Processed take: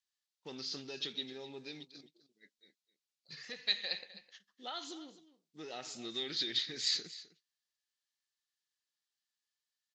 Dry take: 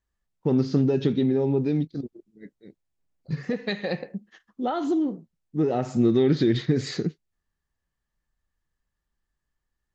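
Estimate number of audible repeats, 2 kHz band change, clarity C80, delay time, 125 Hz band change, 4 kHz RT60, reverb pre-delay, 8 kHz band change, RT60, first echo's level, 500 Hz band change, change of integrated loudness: 1, -7.0 dB, none, 0.258 s, -33.0 dB, none, none, n/a, none, -16.5 dB, -23.0 dB, -12.5 dB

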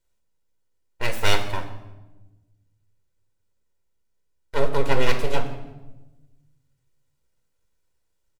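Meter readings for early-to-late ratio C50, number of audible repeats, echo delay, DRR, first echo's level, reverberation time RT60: 10.0 dB, 1, 0.169 s, 6.0 dB, -22.0 dB, 1.1 s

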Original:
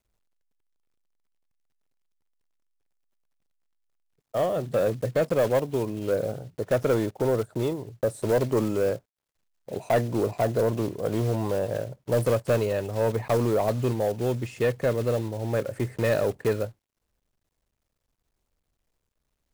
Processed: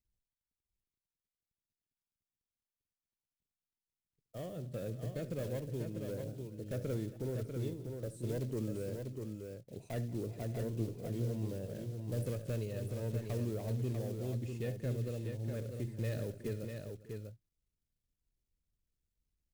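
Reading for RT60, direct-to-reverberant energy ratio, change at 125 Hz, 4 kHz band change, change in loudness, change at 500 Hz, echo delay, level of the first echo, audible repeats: none, none, -7.0 dB, -13.5 dB, -13.5 dB, -17.0 dB, 72 ms, -16.0 dB, 5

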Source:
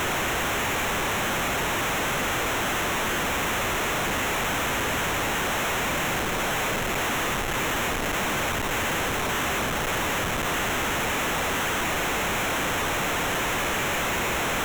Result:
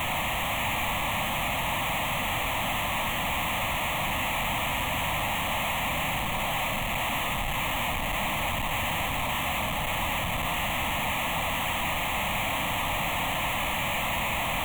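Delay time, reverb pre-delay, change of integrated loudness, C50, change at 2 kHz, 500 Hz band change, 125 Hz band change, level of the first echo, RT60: none, 19 ms, -2.5 dB, 13.5 dB, -3.5 dB, -5.5 dB, -1.0 dB, none, 0.95 s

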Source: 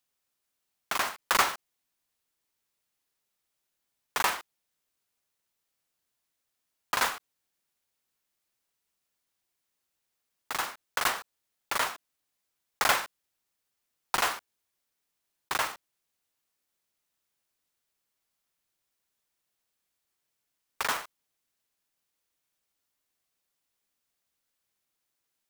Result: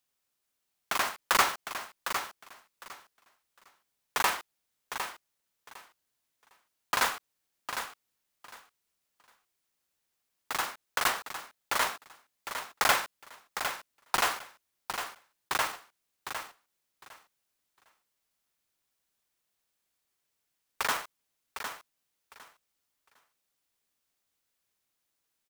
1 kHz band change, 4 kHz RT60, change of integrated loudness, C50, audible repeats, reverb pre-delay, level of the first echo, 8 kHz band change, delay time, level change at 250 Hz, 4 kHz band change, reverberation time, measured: +0.5 dB, none, -2.0 dB, none, 2, none, -8.5 dB, +0.5 dB, 0.756 s, +0.5 dB, +0.5 dB, none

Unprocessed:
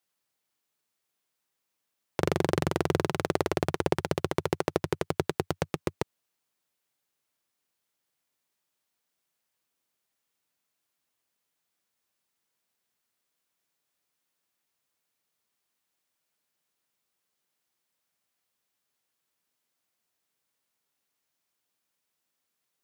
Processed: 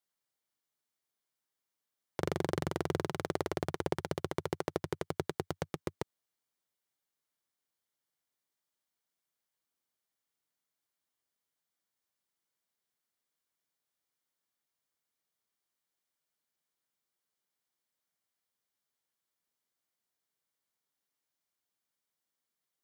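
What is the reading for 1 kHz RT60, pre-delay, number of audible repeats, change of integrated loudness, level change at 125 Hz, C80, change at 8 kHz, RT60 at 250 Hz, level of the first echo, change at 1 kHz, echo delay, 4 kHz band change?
none, none, none, -7.0 dB, -7.0 dB, none, -7.0 dB, none, none, -7.0 dB, none, -7.0 dB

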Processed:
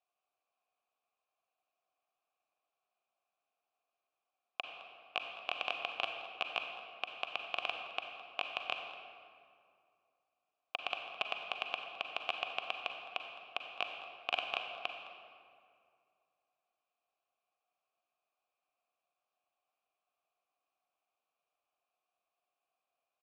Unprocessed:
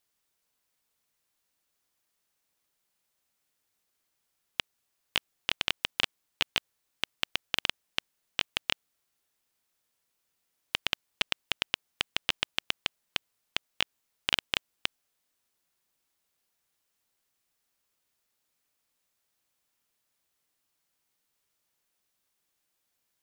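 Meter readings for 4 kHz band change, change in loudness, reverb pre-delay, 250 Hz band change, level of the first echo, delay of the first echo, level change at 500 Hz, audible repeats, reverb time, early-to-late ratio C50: -10.0 dB, -7.0 dB, 36 ms, -12.5 dB, -16.5 dB, 0.212 s, +1.0 dB, 1, 2.3 s, 4.5 dB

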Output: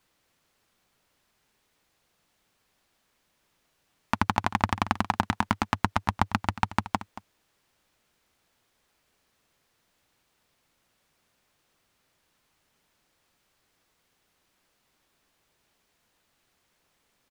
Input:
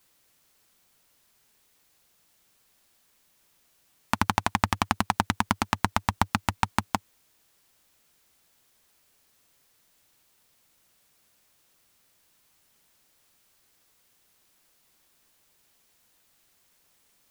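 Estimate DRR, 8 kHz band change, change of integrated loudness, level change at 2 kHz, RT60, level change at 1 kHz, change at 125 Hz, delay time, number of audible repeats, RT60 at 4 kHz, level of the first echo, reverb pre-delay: none, -8.0 dB, -0.5 dB, -1.5 dB, none, -0.5 dB, 0.0 dB, 0.228 s, 1, none, -15.5 dB, none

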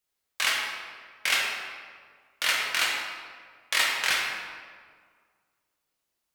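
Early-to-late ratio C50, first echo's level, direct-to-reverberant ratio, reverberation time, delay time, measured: 0.5 dB, none, -2.5 dB, 1.8 s, none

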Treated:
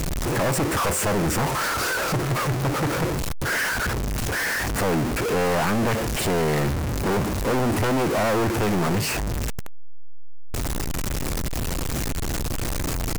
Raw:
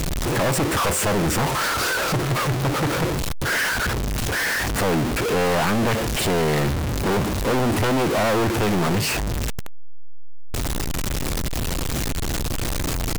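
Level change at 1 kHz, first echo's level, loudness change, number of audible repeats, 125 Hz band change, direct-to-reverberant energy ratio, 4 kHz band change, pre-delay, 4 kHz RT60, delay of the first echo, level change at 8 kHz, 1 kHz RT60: -1.5 dB, none, -2.0 dB, none, -1.5 dB, none, -4.0 dB, none, none, none, -2.0 dB, none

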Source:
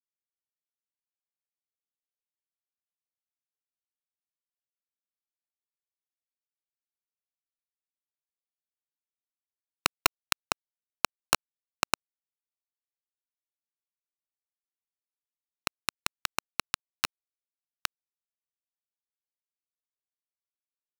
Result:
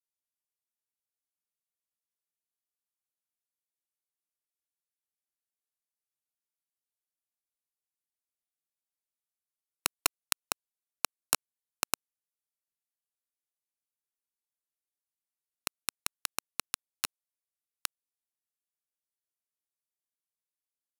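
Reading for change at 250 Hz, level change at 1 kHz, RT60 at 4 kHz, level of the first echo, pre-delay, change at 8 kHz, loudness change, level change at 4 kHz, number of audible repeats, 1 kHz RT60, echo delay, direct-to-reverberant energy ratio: -6.5 dB, -7.0 dB, none, none, none, +1.0 dB, -3.0 dB, -4.5 dB, none, none, none, none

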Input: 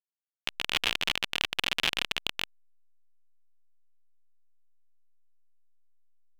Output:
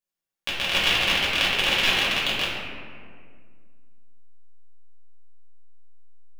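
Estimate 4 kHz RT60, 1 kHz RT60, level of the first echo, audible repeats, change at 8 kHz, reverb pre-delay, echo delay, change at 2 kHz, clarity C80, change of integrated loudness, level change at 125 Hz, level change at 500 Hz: 1.1 s, 1.8 s, none, none, +6.5 dB, 3 ms, none, +9.0 dB, 1.5 dB, +8.5 dB, +11.0 dB, +11.5 dB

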